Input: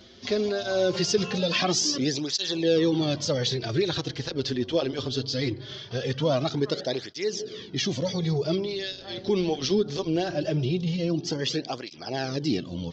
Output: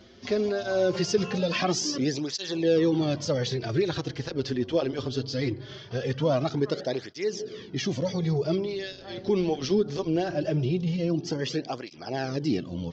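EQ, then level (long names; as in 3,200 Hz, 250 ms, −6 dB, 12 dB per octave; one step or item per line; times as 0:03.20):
parametric band 3,700 Hz −5.5 dB 0.63 octaves
high-shelf EQ 4,900 Hz −6 dB
0.0 dB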